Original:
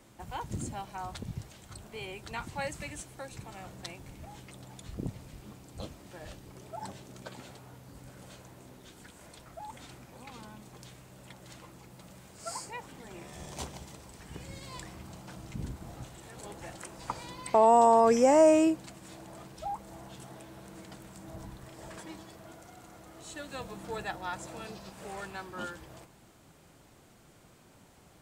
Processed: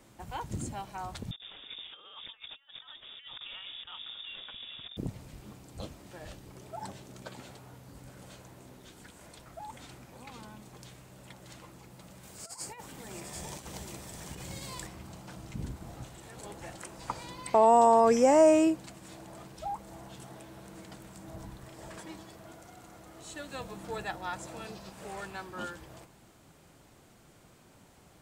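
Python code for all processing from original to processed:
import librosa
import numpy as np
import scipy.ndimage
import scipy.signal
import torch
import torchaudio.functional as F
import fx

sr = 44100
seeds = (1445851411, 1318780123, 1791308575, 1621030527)

y = fx.chain(x, sr, fx.over_compress(threshold_db=-46.0, ratio=-0.5),
    fx.freq_invert(carrier_hz=3600), at=(1.31, 4.97))
y = fx.chain(y, sr, fx.over_compress(threshold_db=-43.0, ratio=-0.5),
    fx.high_shelf(hz=5900.0, db=7.5),
    fx.echo_single(ms=744, db=-5.0), at=(12.23, 14.87))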